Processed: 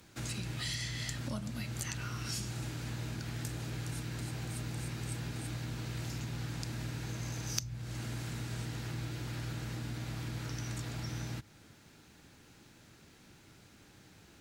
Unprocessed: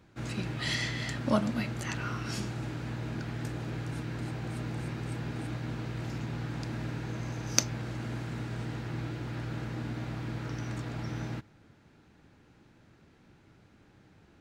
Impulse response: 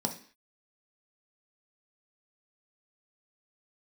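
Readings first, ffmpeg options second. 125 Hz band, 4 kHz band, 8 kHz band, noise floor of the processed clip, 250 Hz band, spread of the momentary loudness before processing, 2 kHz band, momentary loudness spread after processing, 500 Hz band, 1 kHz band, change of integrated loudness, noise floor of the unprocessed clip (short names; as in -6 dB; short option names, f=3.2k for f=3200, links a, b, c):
-3.0 dB, -2.5 dB, -4.0 dB, -60 dBFS, -7.0 dB, 8 LU, -5.5 dB, 21 LU, -9.0 dB, -7.5 dB, -4.0 dB, -61 dBFS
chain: -filter_complex "[0:a]aemphasis=mode=production:type=cd,acrossover=split=130[a][b];[b]acompressor=threshold=-43dB:ratio=5[c];[a][c]amix=inputs=2:normalize=0,highshelf=f=2.8k:g=9"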